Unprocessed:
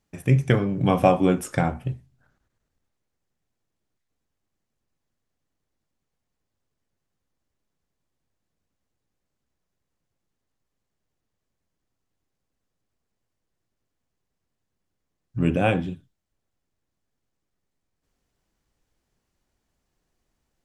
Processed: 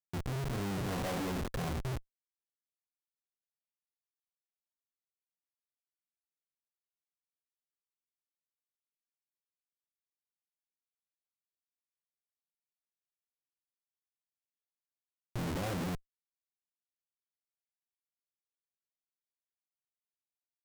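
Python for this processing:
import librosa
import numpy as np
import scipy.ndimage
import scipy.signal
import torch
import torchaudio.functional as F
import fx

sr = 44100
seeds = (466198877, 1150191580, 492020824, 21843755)

p1 = scipy.signal.sosfilt(scipy.signal.butter(2, 1300.0, 'lowpass', fs=sr, output='sos'), x)
p2 = fx.over_compress(p1, sr, threshold_db=-30.0, ratio=-1.0)
p3 = p1 + (p2 * librosa.db_to_amplitude(2.0))
p4 = fx.schmitt(p3, sr, flips_db=-29.0)
y = p4 * librosa.db_to_amplitude(-7.0)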